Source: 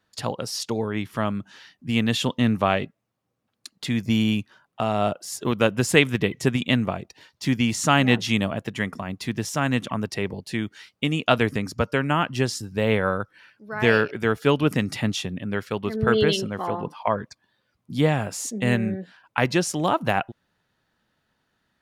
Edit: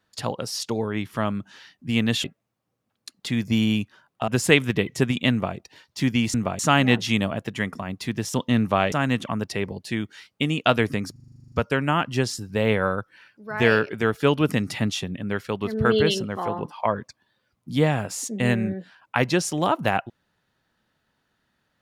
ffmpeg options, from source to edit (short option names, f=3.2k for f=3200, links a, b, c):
-filter_complex "[0:a]asplit=17[a][b][c][d][e][f][g][h][i][j][k][l][m][n][o][p][q];[a]atrim=end=2.242[r];[b]atrim=start=2.818:end=4.862[s];[c]atrim=start=5.728:end=7.792[t];[d]atrim=start=6.758:end=7.012[u];[e]atrim=start=7.788:end=9.542[v];[f]atrim=start=2.238:end=2.822[w];[g]atrim=start=9.538:end=11.782[x];[h]atrim=start=11.738:end=11.782[y];[i]atrim=start=11.738:end=11.782[z];[j]atrim=start=11.738:end=11.782[aa];[k]atrim=start=11.738:end=11.782[ab];[l]atrim=start=11.738:end=11.782[ac];[m]atrim=start=11.738:end=11.782[ad];[n]atrim=start=11.738:end=11.782[ae];[o]atrim=start=11.738:end=11.782[af];[p]atrim=start=11.738:end=11.782[ag];[q]atrim=start=11.738[ah];[r][s]acrossfade=d=0.004:c1=hsin:c2=hsin[ai];[ai][t]acrossfade=d=0.004:c1=hsin:c2=hsin[aj];[aj][u]acrossfade=d=0.004:c1=hsin:c2=hsin[ak];[ak][v]acrossfade=d=0.004:c1=hsin:c2=hsin[al];[al][w]acrossfade=d=0.004:c1=hsin:c2=hsin[am];[am][x]acrossfade=d=0.004:c1=hsin:c2=hsin[an];[an][y]acrossfade=d=0.004:c1=hsin:c2=hsin[ao];[ao][z]acrossfade=d=0.004:c1=hsin:c2=hsin[ap];[ap][aa]acrossfade=d=0.004:c1=hsin:c2=hsin[aq];[aq][ab]acrossfade=d=0.004:c1=hsin:c2=hsin[ar];[ar][ac]acrossfade=d=0.004:c1=hsin:c2=hsin[as];[as][ad]acrossfade=d=0.004:c1=hsin:c2=hsin[at];[at][ae]acrossfade=d=0.004:c1=hsin:c2=hsin[au];[au][af]acrossfade=d=0.004:c1=hsin:c2=hsin[av];[av][ag]acrossfade=d=0.004:c1=hsin:c2=hsin[aw];[aw][ah]acrossfade=d=0.004:c1=hsin:c2=hsin"